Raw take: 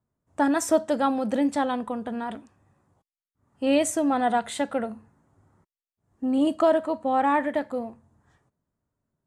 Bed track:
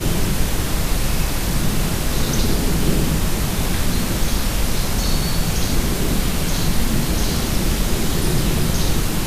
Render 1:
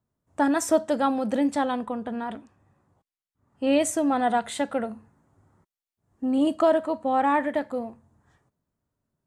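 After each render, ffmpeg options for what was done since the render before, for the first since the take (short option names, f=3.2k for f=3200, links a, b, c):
-filter_complex "[0:a]asettb=1/sr,asplit=3[a][b][c];[a]atrim=end=1.854[d];[b]atrim=start=1.85:end=3.8,asetpts=PTS-STARTPTS,afade=t=in:d=0.004:c=qsin,afade=t=out:st=1.946:d=0.004:c=qsin,highshelf=f=6.2k:g=-6.5[e];[c]atrim=start=3.796[f];[d][e]acrossfade=d=0.004:c1=hsin:c2=qsin[g];[g][f]acrossfade=d=0.004:c1=qsin:c2=hsin"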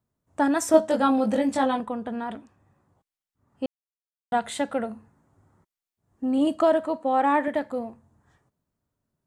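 -filter_complex "[0:a]asettb=1/sr,asplit=3[a][b][c];[a]atrim=end=0.724[d];[b]atrim=start=0.72:end=1.8,asetpts=PTS-STARTPTS,afade=t=in:d=0.004:c=qsin,afade=t=out:st=1.076:d=0.004:c=qsin,asplit=2[e][f];[f]adelay=19,volume=-2dB[g];[e][g]amix=inputs=2:normalize=0,atrim=end_sample=47628[h];[c]atrim=start=1.796[i];[d][h]acrossfade=d=0.004:c1=hsin:c2=qsin[j];[j][i]acrossfade=d=0.004:c1=qsin:c2=hsin,asettb=1/sr,asplit=3[k][l][m];[k]atrim=end=6.964[n];[l]atrim=start=6.96:end=7.48,asetpts=PTS-STARTPTS,afade=t=in:d=0.004:c=qsin,afade=t=out:st=0.516:d=0.004:c=qsin,lowshelf=f=220:t=q:w=1.5:g=-11[o];[m]atrim=start=7.476[p];[n][o]acrossfade=d=0.004:c1=hsin:c2=qsin[q];[q][p]acrossfade=d=0.004:c1=qsin:c2=hsin,asplit=3[r][s][t];[r]atrim=end=3.66,asetpts=PTS-STARTPTS,afade=t=out:st=3.656:d=0.004:c=hsin[u];[s]atrim=start=3.66:end=4.32,asetpts=PTS-STARTPTS,volume=0[v];[t]atrim=start=4.32,asetpts=PTS-STARTPTS,afade=t=in:d=0.004:c=hsin[w];[u][v][w]concat=n=3:v=0:a=1"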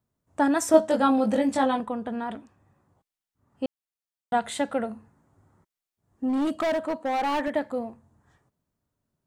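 -filter_complex "[0:a]asplit=3[a][b][c];[a]afade=t=out:st=6.28:d=0.02[d];[b]asoftclip=type=hard:threshold=-22.5dB,afade=t=in:st=6.28:d=0.02,afade=t=out:st=7.54:d=0.02[e];[c]afade=t=in:st=7.54:d=0.02[f];[d][e][f]amix=inputs=3:normalize=0"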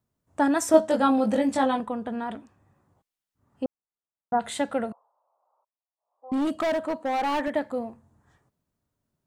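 -filter_complex "[0:a]asplit=3[a][b][c];[a]afade=t=out:st=3.63:d=0.02[d];[b]lowpass=f=1.4k:w=0.5412,lowpass=f=1.4k:w=1.3066,afade=t=in:st=3.63:d=0.02,afade=t=out:st=4.39:d=0.02[e];[c]afade=t=in:st=4.39:d=0.02[f];[d][e][f]amix=inputs=3:normalize=0,asettb=1/sr,asplit=3[g][h][i];[g]atrim=end=4.924[j];[h]atrim=start=4.92:end=6.32,asetpts=PTS-STARTPTS,afade=t=in:d=0.004:c=qsin,afade=t=out:st=1.396:d=0.004:c=qsin,asuperpass=centerf=790:order=8:qfactor=1.3[k];[i]atrim=start=6.316[l];[j][k]acrossfade=d=0.004:c1=hsin:c2=qsin[m];[m][l]acrossfade=d=0.004:c1=qsin:c2=hsin"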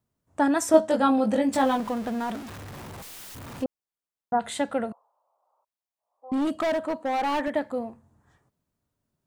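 -filter_complex "[0:a]asettb=1/sr,asplit=3[a][b][c];[a]atrim=end=1.534[d];[b]atrim=start=1.53:end=3.64,asetpts=PTS-STARTPTS,afade=t=in:d=0.004:c=qsin,afade=t=out:st=2.106:d=0.004:c=qsin,aeval=exprs='val(0)+0.5*0.0188*sgn(val(0))':c=same[e];[c]atrim=start=3.636[f];[d][e]acrossfade=d=0.004:c1=hsin:c2=qsin[g];[g][f]acrossfade=d=0.004:c1=qsin:c2=hsin"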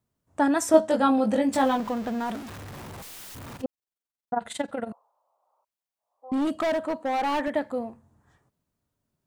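-filter_complex "[0:a]asettb=1/sr,asplit=3[a][b][c];[a]atrim=end=1.684[d];[b]atrim=start=1.68:end=2.26,asetpts=PTS-STARTPTS,afade=t=in:d=0.004:c=qsin,afade=t=out:st=0.576:d=0.004:c=qsin,equalizer=f=9.9k:t=o:w=0.4:g=-7[e];[c]atrim=start=2.256[f];[d][e]acrossfade=d=0.004:c1=hsin:c2=qsin[g];[g][f]acrossfade=d=0.004:c1=qsin:c2=hsin,asettb=1/sr,asplit=3[h][i][j];[h]atrim=end=3.564[k];[i]atrim=start=3.56:end=4.89,asetpts=PTS-STARTPTS,afade=t=in:d=0.004:c=qsin,afade=t=out:st=1.326:d=0.004:c=qsin,tremolo=f=22:d=0.824[l];[j]atrim=start=4.886[m];[k][l]acrossfade=d=0.004:c1=hsin:c2=qsin[n];[n][m]acrossfade=d=0.004:c1=qsin:c2=hsin"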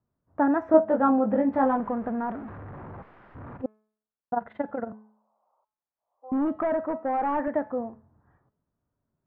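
-af "lowpass=f=1.6k:w=0.5412,lowpass=f=1.6k:w=1.3066,bandreject=f=214.9:t=h:w=4,bandreject=f=429.8:t=h:w=4,bandreject=f=644.7:t=h:w=4,bandreject=f=859.6:t=h:w=4,bandreject=f=1.0745k:t=h:w=4,bandreject=f=1.2894k:t=h:w=4,bandreject=f=1.5043k:t=h:w=4,bandreject=f=1.7192k:t=h:w=4,bandreject=f=1.9341k:t=h:w=4,bandreject=f=2.149k:t=h:w=4,bandreject=f=2.3639k:t=h:w=4,bandreject=f=2.5788k:t=h:w=4,bandreject=f=2.7937k:t=h:w=4,bandreject=f=3.0086k:t=h:w=4,bandreject=f=3.2235k:t=h:w=4,bandreject=f=3.4384k:t=h:w=4,bandreject=f=3.6533k:t=h:w=4,bandreject=f=3.8682k:t=h:w=4,bandreject=f=4.0831k:t=h:w=4,bandreject=f=4.298k:t=h:w=4,bandreject=f=4.5129k:t=h:w=4,bandreject=f=4.7278k:t=h:w=4,bandreject=f=4.9427k:t=h:w=4,bandreject=f=5.1576k:t=h:w=4,bandreject=f=5.3725k:t=h:w=4,bandreject=f=5.5874k:t=h:w=4,bandreject=f=5.8023k:t=h:w=4,bandreject=f=6.0172k:t=h:w=4,bandreject=f=6.2321k:t=h:w=4,bandreject=f=6.447k:t=h:w=4,bandreject=f=6.6619k:t=h:w=4,bandreject=f=6.8768k:t=h:w=4,bandreject=f=7.0917k:t=h:w=4,bandreject=f=7.3066k:t=h:w=4,bandreject=f=7.5215k:t=h:w=4,bandreject=f=7.7364k:t=h:w=4,bandreject=f=7.9513k:t=h:w=4,bandreject=f=8.1662k:t=h:w=4,bandreject=f=8.3811k:t=h:w=4"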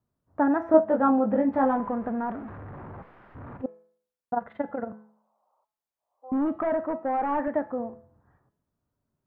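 -af "bandreject=f=167.6:t=h:w=4,bandreject=f=335.2:t=h:w=4,bandreject=f=502.8:t=h:w=4,bandreject=f=670.4:t=h:w=4,bandreject=f=838:t=h:w=4,bandreject=f=1.0056k:t=h:w=4,bandreject=f=1.1732k:t=h:w=4,bandreject=f=1.3408k:t=h:w=4,bandreject=f=1.5084k:t=h:w=4,bandreject=f=1.676k:t=h:w=4,bandreject=f=1.8436k:t=h:w=4,bandreject=f=2.0112k:t=h:w=4,bandreject=f=2.1788k:t=h:w=4,bandreject=f=2.3464k:t=h:w=4,bandreject=f=2.514k:t=h:w=4,bandreject=f=2.6816k:t=h:w=4,bandreject=f=2.8492k:t=h:w=4,bandreject=f=3.0168k:t=h:w=4,bandreject=f=3.1844k:t=h:w=4,bandreject=f=3.352k:t=h:w=4,bandreject=f=3.5196k:t=h:w=4,bandreject=f=3.6872k:t=h:w=4,bandreject=f=3.8548k:t=h:w=4,bandreject=f=4.0224k:t=h:w=4,bandreject=f=4.19k:t=h:w=4,bandreject=f=4.3576k:t=h:w=4,bandreject=f=4.5252k:t=h:w=4,bandreject=f=4.6928k:t=h:w=4,bandreject=f=4.8604k:t=h:w=4,bandreject=f=5.028k:t=h:w=4,bandreject=f=5.1956k:t=h:w=4,bandreject=f=5.3632k:t=h:w=4,bandreject=f=5.5308k:t=h:w=4"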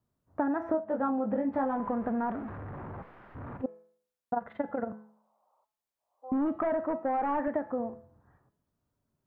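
-af "acompressor=threshold=-26dB:ratio=8"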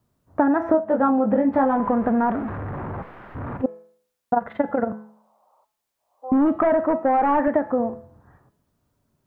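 -af "volume=10.5dB"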